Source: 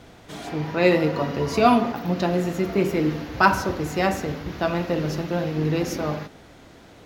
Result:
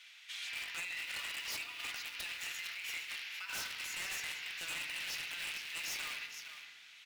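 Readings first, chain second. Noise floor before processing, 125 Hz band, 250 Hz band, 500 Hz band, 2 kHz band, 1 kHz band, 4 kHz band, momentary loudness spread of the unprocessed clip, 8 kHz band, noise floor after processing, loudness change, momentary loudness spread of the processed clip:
-48 dBFS, -40.0 dB, under -40 dB, -38.5 dB, -10.0 dB, -28.0 dB, -3.5 dB, 11 LU, -3.0 dB, -57 dBFS, -16.5 dB, 5 LU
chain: in parallel at -11.5 dB: bit crusher 4-bit; on the sum: compressor with a negative ratio -23 dBFS, ratio -1; ladder high-pass 2.1 kHz, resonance 45%; treble shelf 5.1 kHz -5 dB; on a send: delay 462 ms -11 dB; on the sum: wavefolder -38 dBFS; FDN reverb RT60 2 s, low-frequency decay 1.25×, high-frequency decay 0.3×, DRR 7.5 dB; trim +3.5 dB

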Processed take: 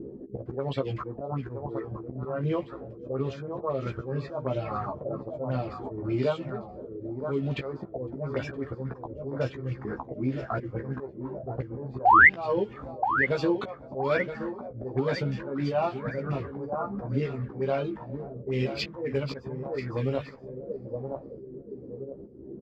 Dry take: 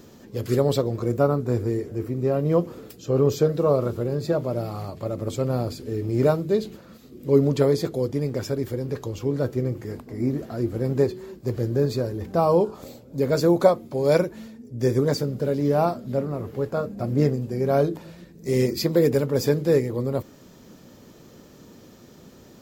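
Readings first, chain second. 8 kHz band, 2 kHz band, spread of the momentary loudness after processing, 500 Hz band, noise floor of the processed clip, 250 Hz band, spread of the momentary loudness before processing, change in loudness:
under -15 dB, +12.5 dB, 11 LU, -9.0 dB, -45 dBFS, -8.0 dB, 10 LU, -5.5 dB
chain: bass shelf 160 Hz +2 dB; compression 4:1, threshold -26 dBFS, peak gain reduction 13.5 dB; reverb removal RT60 1.5 s; feedback echo behind a high-pass 507 ms, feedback 56%, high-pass 2.1 kHz, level -6.5 dB; slow attack 175 ms; painted sound rise, 12.05–12.28 s, 680–2200 Hz -20 dBFS; doubling 15 ms -4 dB; on a send: feedback delay 972 ms, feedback 42%, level -10 dB; on the sum: touch-sensitive low-pass 280–2900 Hz up, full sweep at -28 dBFS; trim +1.5 dB

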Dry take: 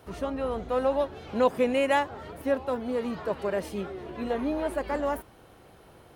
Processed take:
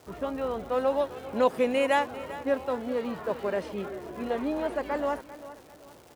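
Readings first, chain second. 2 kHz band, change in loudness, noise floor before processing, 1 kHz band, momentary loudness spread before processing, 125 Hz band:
0.0 dB, -0.5 dB, -54 dBFS, 0.0 dB, 11 LU, -4.0 dB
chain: level-controlled noise filter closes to 1.2 kHz, open at -21 dBFS; bass shelf 110 Hz -9 dB; bit crusher 11-bit; crackle 380 per s -43 dBFS; feedback delay 395 ms, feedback 38%, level -15.5 dB

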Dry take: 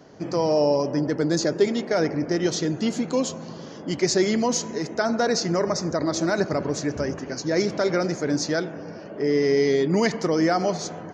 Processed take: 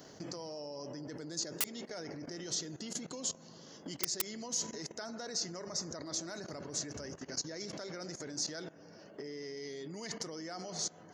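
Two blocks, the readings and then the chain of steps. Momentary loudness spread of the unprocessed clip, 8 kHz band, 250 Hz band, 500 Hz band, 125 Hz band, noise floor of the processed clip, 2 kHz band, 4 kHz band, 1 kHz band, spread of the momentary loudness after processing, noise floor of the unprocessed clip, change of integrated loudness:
8 LU, -5.5 dB, -21.0 dB, -22.5 dB, -19.5 dB, -56 dBFS, -18.0 dB, -9.0 dB, -20.5 dB, 9 LU, -39 dBFS, -16.0 dB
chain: band-stop 2.4 kHz, Q 13; level held to a coarse grid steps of 17 dB; integer overflow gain 20 dB; compression, threshold -37 dBFS, peak gain reduction 11.5 dB; pre-emphasis filter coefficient 0.8; trim +9.5 dB

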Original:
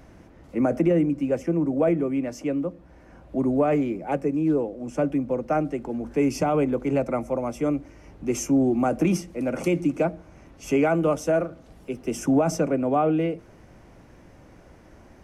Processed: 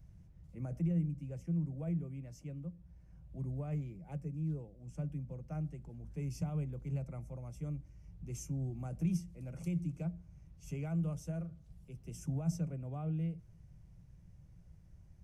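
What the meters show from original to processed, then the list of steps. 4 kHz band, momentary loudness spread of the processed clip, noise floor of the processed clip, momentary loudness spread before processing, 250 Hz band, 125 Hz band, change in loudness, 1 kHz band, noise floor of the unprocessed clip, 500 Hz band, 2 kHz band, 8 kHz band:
under -15 dB, 18 LU, -59 dBFS, 9 LU, -16.5 dB, -4.5 dB, -15.0 dB, -26.5 dB, -51 dBFS, -26.5 dB, -24.5 dB, -16.0 dB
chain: FFT filter 170 Hz 0 dB, 240 Hz -22 dB, 1.4 kHz -23 dB, 7.8 kHz -11 dB; trim -4 dB

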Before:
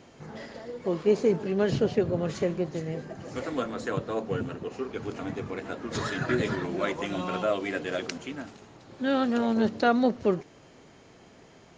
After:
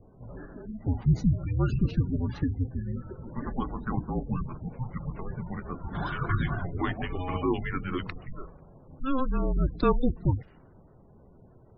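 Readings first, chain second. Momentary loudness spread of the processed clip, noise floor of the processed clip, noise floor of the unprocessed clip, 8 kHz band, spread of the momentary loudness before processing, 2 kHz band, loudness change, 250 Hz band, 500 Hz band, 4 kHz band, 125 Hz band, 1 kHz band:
14 LU, -55 dBFS, -54 dBFS, no reading, 13 LU, -5.0 dB, -1.5 dB, -2.0 dB, -8.5 dB, -8.0 dB, +7.5 dB, -2.5 dB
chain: frequency shift -270 Hz; level-controlled noise filter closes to 840 Hz, open at -20.5 dBFS; spectral gate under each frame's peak -25 dB strong

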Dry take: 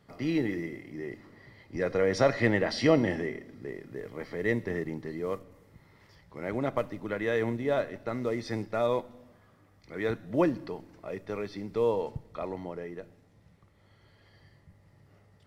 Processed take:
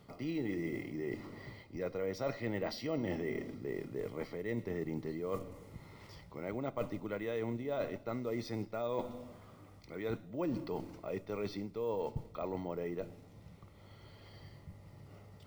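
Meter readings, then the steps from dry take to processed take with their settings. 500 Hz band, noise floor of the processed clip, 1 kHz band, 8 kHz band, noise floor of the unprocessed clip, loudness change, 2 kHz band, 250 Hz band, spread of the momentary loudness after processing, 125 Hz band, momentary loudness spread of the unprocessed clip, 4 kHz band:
-8.0 dB, -58 dBFS, -8.5 dB, no reading, -62 dBFS, -8.5 dB, -12.0 dB, -7.0 dB, 18 LU, -6.5 dB, 16 LU, -9.0 dB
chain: peaking EQ 1.7 kHz -13.5 dB 0.21 oct; reverse; compression 5:1, threshold -41 dBFS, peak gain reduction 21.5 dB; reverse; careless resampling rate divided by 2×, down none, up hold; trim +5.5 dB

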